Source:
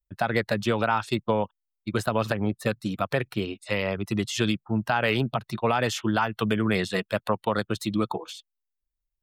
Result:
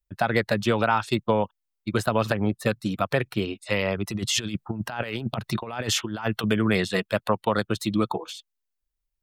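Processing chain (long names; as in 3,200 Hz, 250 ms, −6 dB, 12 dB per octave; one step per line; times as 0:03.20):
0:04.07–0:06.44: compressor whose output falls as the input rises −29 dBFS, ratio −0.5
level +2 dB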